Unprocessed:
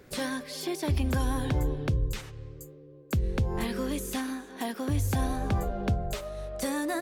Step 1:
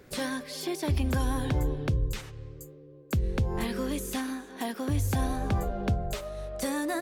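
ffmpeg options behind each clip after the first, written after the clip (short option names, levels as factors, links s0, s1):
-af anull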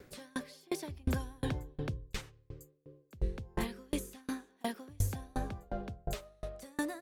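-af "aeval=exprs='val(0)*pow(10,-34*if(lt(mod(2.8*n/s,1),2*abs(2.8)/1000),1-mod(2.8*n/s,1)/(2*abs(2.8)/1000),(mod(2.8*n/s,1)-2*abs(2.8)/1000)/(1-2*abs(2.8)/1000))/20)':c=same,volume=1.12"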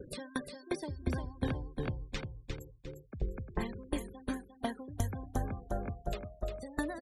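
-af "acompressor=threshold=0.00355:ratio=2,afftfilt=real='re*gte(hypot(re,im),0.00282)':imag='im*gte(hypot(re,im),0.00282)':win_size=1024:overlap=0.75,aecho=1:1:352|704|1056|1408:0.473|0.156|0.0515|0.017,volume=2.99"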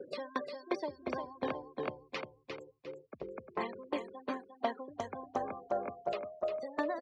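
-af "volume=15.8,asoftclip=hard,volume=0.0631,highpass=410,equalizer=f=600:t=q:w=4:g=4,equalizer=f=1100:t=q:w=4:g=5,equalizer=f=1600:t=q:w=4:g=-7,equalizer=f=3600:t=q:w=4:g=-8,lowpass=f=4600:w=0.5412,lowpass=f=4600:w=1.3066,volume=1.68"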